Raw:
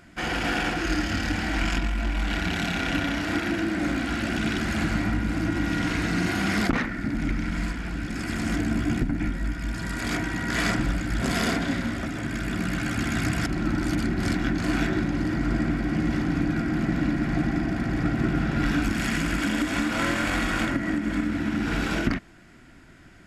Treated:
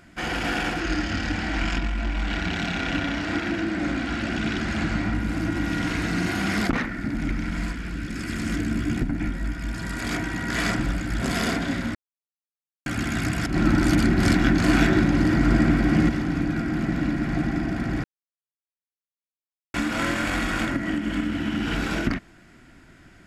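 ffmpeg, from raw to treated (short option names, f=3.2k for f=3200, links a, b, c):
-filter_complex "[0:a]asettb=1/sr,asplit=3[a][b][c];[a]atrim=end=0.804[d];[b]atrim=start=0.8:end=5.15,asetpts=PTS-STARTPTS,afade=t=in:d=0.004:c=qsin,afade=t=out:st=4.346:d=0.004:c=qsin,lowpass=6.8k[e];[c]atrim=start=5.146[f];[d][e]acrossfade=d=0.004:c1=hsin:c2=qsin[g];[g][f]acrossfade=d=0.004:c1=qsin:c2=hsin,asettb=1/sr,asplit=3[h][i][j];[h]atrim=end=7.744[k];[i]atrim=start=7.74:end=8.97,asetpts=PTS-STARTPTS,afade=t=in:d=0.004:c=qsin,afade=t=out:st=1.226:d=0.004:c=qsin,equalizer=f=780:t=o:w=0.77:g=-7[l];[j]atrim=start=8.966[m];[k][l]acrossfade=d=0.004:c1=hsin:c2=qsin[n];[n][m]acrossfade=d=0.004:c1=qsin:c2=hsin,asettb=1/sr,asplit=3[o][p][q];[o]atrim=end=20.864[r];[p]atrim=start=20.86:end=21.75,asetpts=PTS-STARTPTS,afade=t=in:d=0.004:c=qsin,afade=t=out:st=0.886:d=0.004:c=qsin,equalizer=f=3k:w=7.1:g=11[s];[q]atrim=start=21.746[t];[r][s]acrossfade=d=0.004:c1=hsin:c2=qsin[u];[u][t]acrossfade=d=0.004:c1=qsin:c2=hsin,asplit=7[v][w][x][y][z][aa][ab];[v]atrim=end=11.95,asetpts=PTS-STARTPTS,afade=t=out:st=11.946:d=0.004:c=hsin[ac];[w]atrim=start=11.95:end=12.86,asetpts=PTS-STARTPTS,volume=0[ad];[x]atrim=start=12.86:end=13.542,asetpts=PTS-STARTPTS,afade=t=in:d=0.004:c=hsin[ae];[y]atrim=start=13.538:end=16.092,asetpts=PTS-STARTPTS,volume=6dB[af];[z]atrim=start=16.088:end=18.04,asetpts=PTS-STARTPTS,afade=t=out:st=1.948:d=0.004:c=hsin[ag];[aa]atrim=start=18.04:end=19.74,asetpts=PTS-STARTPTS,volume=0[ah];[ab]atrim=start=19.74,asetpts=PTS-STARTPTS,afade=t=in:d=0.004:c=hsin[ai];[ac][ad][ae]concat=n=3:v=0:a=1[aj];[aj][af]acrossfade=d=0.004:c1=hsin:c2=hsin[ak];[ag][ah][ai]concat=n=3:v=0:a=1[al];[ak][al]acrossfade=d=0.004:c1=hsin:c2=hsin"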